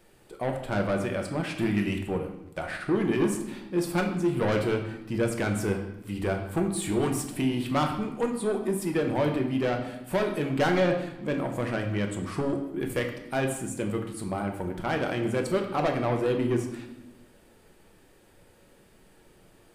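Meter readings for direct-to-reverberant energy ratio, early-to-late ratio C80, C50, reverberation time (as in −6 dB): 2.5 dB, 9.5 dB, 7.0 dB, 0.95 s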